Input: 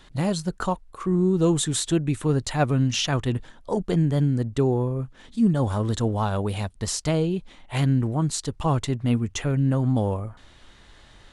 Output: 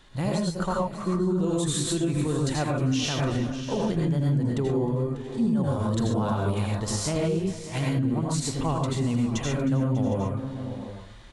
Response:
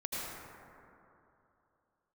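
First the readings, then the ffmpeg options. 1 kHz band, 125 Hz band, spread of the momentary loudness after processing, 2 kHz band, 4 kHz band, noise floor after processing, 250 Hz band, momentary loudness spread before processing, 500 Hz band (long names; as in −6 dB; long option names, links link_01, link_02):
−2.0 dB, −2.5 dB, 4 LU, −2.0 dB, −2.5 dB, −39 dBFS, −1.5 dB, 8 LU, −1.5 dB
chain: -filter_complex "[0:a]aecho=1:1:312|594|758:0.119|0.168|0.141[link_01];[1:a]atrim=start_sample=2205,atrim=end_sample=6615[link_02];[link_01][link_02]afir=irnorm=-1:irlink=0,alimiter=limit=-17dB:level=0:latency=1:release=96"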